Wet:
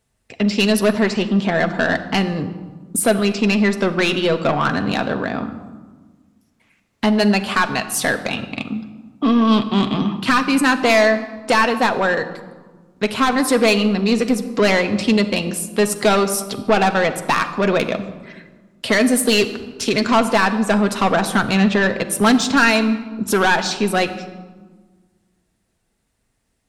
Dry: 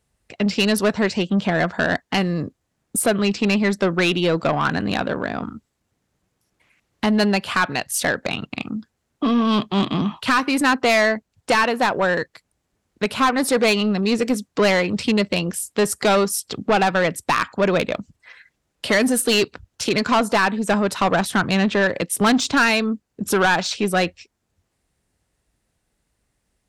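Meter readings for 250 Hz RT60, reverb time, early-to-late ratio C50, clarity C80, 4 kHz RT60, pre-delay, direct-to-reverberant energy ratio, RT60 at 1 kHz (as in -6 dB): 2.0 s, 1.4 s, 12.0 dB, 13.5 dB, 0.85 s, 4 ms, 6.5 dB, 1.4 s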